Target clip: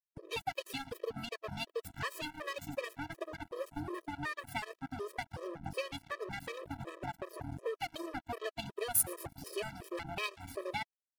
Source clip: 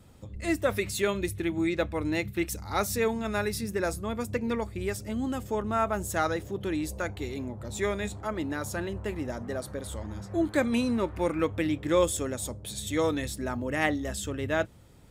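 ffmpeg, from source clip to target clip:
ffmpeg -i in.wav -filter_complex "[0:a]afwtdn=0.0158,asetrate=59535,aresample=44100,highshelf=frequency=2400:gain=9.5,asplit=4[link_01][link_02][link_03][link_04];[link_02]adelay=115,afreqshift=-130,volume=-20dB[link_05];[link_03]adelay=230,afreqshift=-260,volume=-26.9dB[link_06];[link_04]adelay=345,afreqshift=-390,volume=-33.9dB[link_07];[link_01][link_05][link_06][link_07]amix=inputs=4:normalize=0,acrossover=split=6500[link_08][link_09];[link_08]acompressor=threshold=-38dB:ratio=8[link_10];[link_10][link_09]amix=inputs=2:normalize=0,bandreject=frequency=315.2:width_type=h:width=4,bandreject=frequency=630.4:width_type=h:width=4,bandreject=frequency=945.6:width_type=h:width=4,bandreject=frequency=1260.8:width_type=h:width=4,aeval=exprs='sgn(val(0))*max(abs(val(0))-0.0075,0)':channel_layout=same,highshelf=frequency=6400:gain=-8.5,afftfilt=real='re*gt(sin(2*PI*2.7*pts/sr)*(1-2*mod(floor(b*sr/1024/330),2)),0)':imag='im*gt(sin(2*PI*2.7*pts/sr)*(1-2*mod(floor(b*sr/1024/330),2)),0)':win_size=1024:overlap=0.75,volume=9.5dB" out.wav

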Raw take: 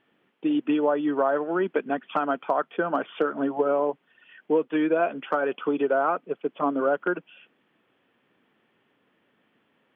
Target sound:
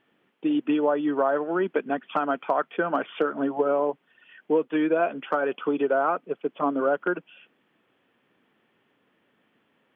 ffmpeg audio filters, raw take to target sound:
ffmpeg -i in.wav -filter_complex "[0:a]asettb=1/sr,asplit=3[link_01][link_02][link_03];[link_01]atrim=end=2.334[link_04];[link_02]atrim=start=2.33:end=3.21,asetpts=PTS-STARTPTS,afade=type=in:duration=0.004:curve=qsin,afade=type=out:start_time=0.876:duration=0.004:curve=qsin,equalizer=frequency=2200:width_type=o:width=0.82:gain=4[link_05];[link_03]atrim=start=3.206[link_06];[link_04][link_05]acrossfade=duration=0.004:curve1=hsin:curve2=qsin[link_07];[link_07][link_06]acrossfade=duration=0.004:curve1=qsin:curve2=hsin" out.wav

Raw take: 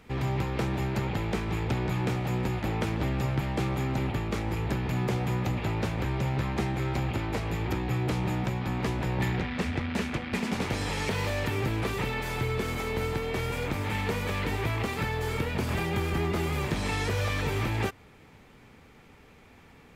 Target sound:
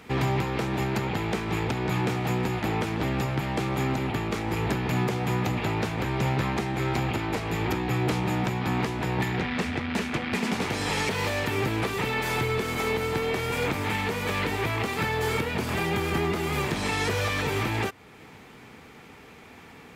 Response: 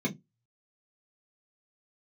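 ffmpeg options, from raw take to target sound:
-af "highpass=frequency=170:poles=1,bandreject=frequency=560:width=13,alimiter=level_in=0.5dB:limit=-24dB:level=0:latency=1:release=385,volume=-0.5dB,volume=8dB"

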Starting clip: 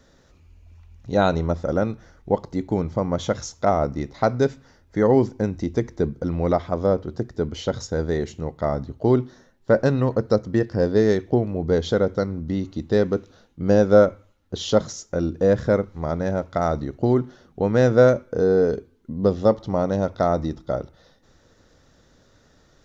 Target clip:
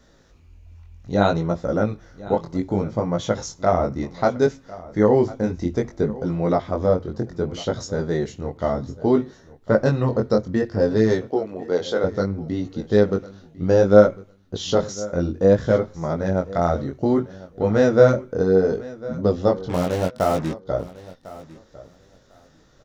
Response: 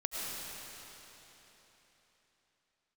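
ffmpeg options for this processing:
-filter_complex "[0:a]asettb=1/sr,asplit=3[link_01][link_02][link_03];[link_01]atrim=end=11.254[link_04];[link_02]atrim=start=11.25:end=12.04,asetpts=PTS-STARTPTS,afade=type=in:duration=0.004:curve=qsin,afade=type=out:start_time=0.786:duration=0.004:curve=qsin,highpass=380[link_05];[link_03]atrim=start=12.036[link_06];[link_04][link_05]acrossfade=duration=0.004:curve1=hsin:curve2=qsin[link_07];[link_07][link_06]acrossfade=duration=0.004:curve1=qsin:curve2=hsin,asettb=1/sr,asplit=3[link_08][link_09][link_10];[link_08]atrim=end=19.694[link_11];[link_09]atrim=start=19.69:end=20.66,asetpts=PTS-STARTPTS,afade=type=in:duration=0.004:curve=qsin,afade=type=out:start_time=0.966:duration=0.004:curve=qsin,acrusher=bits=4:mix=0:aa=0.5[link_12];[link_10]atrim=start=20.656[link_13];[link_11][link_12]acrossfade=duration=0.004:curve1=hsin:curve2=qsin[link_14];[link_14][link_13]acrossfade=duration=0.004:curve1=qsin:curve2=hsin,flanger=delay=17.5:depth=5.7:speed=0.63,asplit=2[link_15][link_16];[link_16]aecho=0:1:1051|2102:0.119|0.0202[link_17];[link_15][link_17]amix=inputs=2:normalize=0,volume=3.5dB"

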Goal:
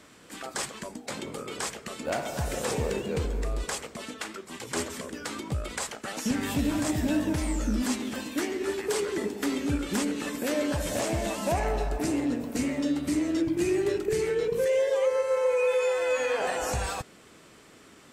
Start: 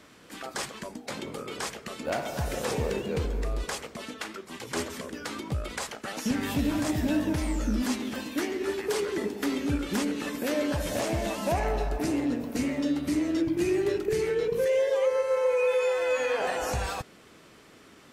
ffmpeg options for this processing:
ffmpeg -i in.wav -af "equalizer=frequency=7900:width=2.8:gain=6" out.wav

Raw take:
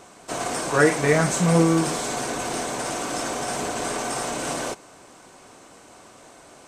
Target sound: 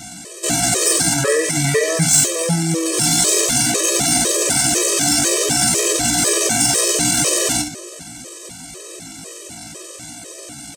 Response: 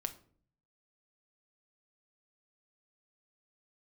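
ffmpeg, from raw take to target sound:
-filter_complex "[0:a]acompressor=threshold=-22dB:ratio=5,asplit=2[link_01][link_02];[1:a]atrim=start_sample=2205,lowshelf=frequency=450:gain=4[link_03];[link_02][link_03]afir=irnorm=-1:irlink=0,volume=7dB[link_04];[link_01][link_04]amix=inputs=2:normalize=0,acrossover=split=410[link_05][link_06];[link_05]acompressor=threshold=-24dB:ratio=2.5[link_07];[link_07][link_06]amix=inputs=2:normalize=0,equalizer=frequency=990:width_type=o:width=1:gain=-14,asoftclip=type=tanh:threshold=-15dB,highshelf=frequency=4100:gain=9,asplit=2[link_08][link_09];[link_09]adelay=37,volume=-11dB[link_10];[link_08][link_10]amix=inputs=2:normalize=0,atempo=0.62,highpass=46,afftfilt=real='re*gt(sin(2*PI*2*pts/sr)*(1-2*mod(floor(b*sr/1024/330),2)),0)':imag='im*gt(sin(2*PI*2*pts/sr)*(1-2*mod(floor(b*sr/1024/330),2)),0)':win_size=1024:overlap=0.75,volume=6dB"

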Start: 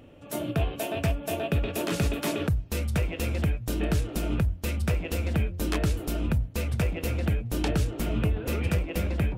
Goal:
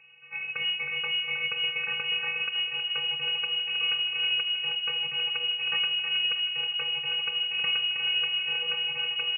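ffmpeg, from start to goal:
ffmpeg -i in.wav -filter_complex "[0:a]asplit=2[link_01][link_02];[link_02]adelay=317,lowpass=frequency=2100:poles=1,volume=-5.5dB,asplit=2[link_03][link_04];[link_04]adelay=317,lowpass=frequency=2100:poles=1,volume=0.53,asplit=2[link_05][link_06];[link_06]adelay=317,lowpass=frequency=2100:poles=1,volume=0.53,asplit=2[link_07][link_08];[link_08]adelay=317,lowpass=frequency=2100:poles=1,volume=0.53,asplit=2[link_09][link_10];[link_10]adelay=317,lowpass=frequency=2100:poles=1,volume=0.53,asplit=2[link_11][link_12];[link_12]adelay=317,lowpass=frequency=2100:poles=1,volume=0.53,asplit=2[link_13][link_14];[link_14]adelay=317,lowpass=frequency=2100:poles=1,volume=0.53[link_15];[link_01][link_03][link_05][link_07][link_09][link_11][link_13][link_15]amix=inputs=8:normalize=0,afftfilt=real='hypot(re,im)*cos(PI*b)':imag='0':win_size=512:overlap=0.75,lowpass=frequency=2500:width_type=q:width=0.5098,lowpass=frequency=2500:width_type=q:width=0.6013,lowpass=frequency=2500:width_type=q:width=0.9,lowpass=frequency=2500:width_type=q:width=2.563,afreqshift=-2900" out.wav

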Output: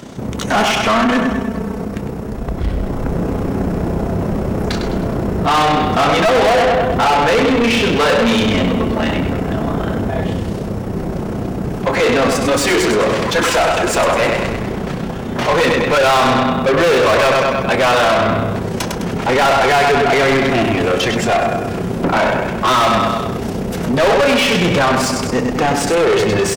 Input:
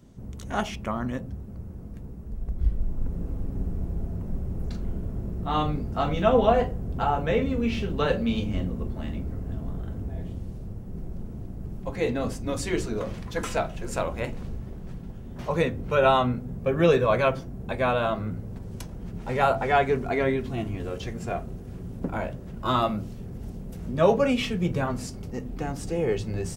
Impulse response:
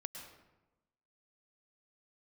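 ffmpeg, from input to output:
-filter_complex "[0:a]asettb=1/sr,asplit=3[link_01][link_02][link_03];[link_01]atrim=end=0.854[link_04];[link_02]atrim=start=0.85:end=1.84,asetpts=PTS-STARTPTS,afade=type=in:duration=0.004:curve=qsin,afade=type=out:start_time=0.986:duration=0.004:curve=qsin,aecho=1:1:4.5:0.82,atrim=end_sample=43659[link_05];[link_03]atrim=start=1.836[link_06];[link_04][link_05]acrossfade=duration=0.004:curve1=hsin:curve2=qsin[link_07];[link_07][link_06]acrossfade=duration=0.004:curve1=qsin:curve2=hsin,aecho=1:1:104|208|312|416|520:0.376|0.18|0.0866|0.0416|0.02,tremolo=f=31:d=0.519,asplit=2[link_08][link_09];[link_09]highpass=frequency=720:poles=1,volume=38dB,asoftclip=type=tanh:threshold=-5.5dB[link_10];[link_08][link_10]amix=inputs=2:normalize=0,lowpass=frequency=3900:poles=1,volume=-6dB"

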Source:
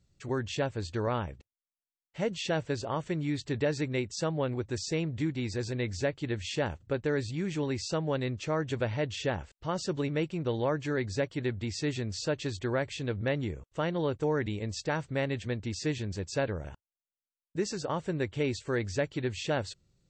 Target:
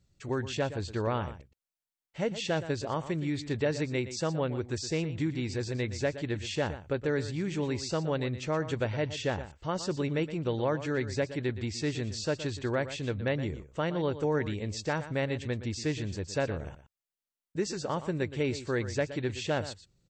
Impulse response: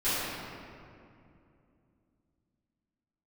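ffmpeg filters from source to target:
-af "aecho=1:1:119:0.224"

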